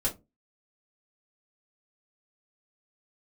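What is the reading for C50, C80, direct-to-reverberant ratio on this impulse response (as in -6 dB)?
15.0 dB, 24.5 dB, -5.5 dB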